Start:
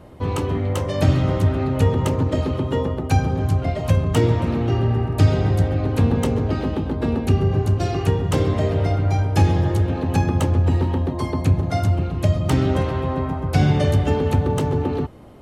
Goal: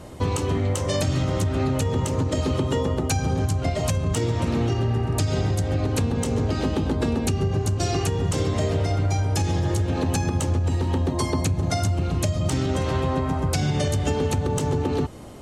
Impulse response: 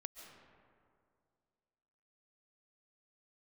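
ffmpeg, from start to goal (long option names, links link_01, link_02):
-af "equalizer=frequency=7200:width_type=o:width=1.5:gain=13.5,alimiter=limit=-13dB:level=0:latency=1:release=205,acompressor=threshold=-22dB:ratio=6,volume=3dB"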